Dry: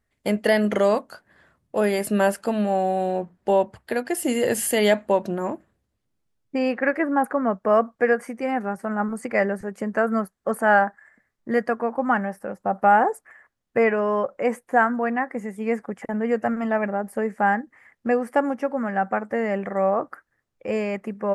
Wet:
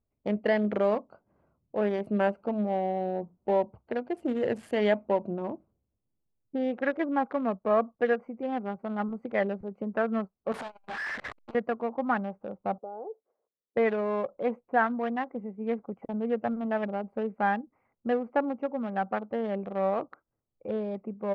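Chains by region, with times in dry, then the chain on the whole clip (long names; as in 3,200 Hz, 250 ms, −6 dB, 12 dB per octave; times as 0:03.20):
0:10.52–0:11.55: sign of each sample alone + low-shelf EQ 310 Hz −11.5 dB + saturating transformer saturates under 860 Hz
0:12.78–0:13.77: resonant band-pass 460 Hz, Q 3.8 + downward compressor 2 to 1, threshold −31 dBFS
whole clip: adaptive Wiener filter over 25 samples; low-pass filter 2,800 Hz 12 dB per octave; level −5.5 dB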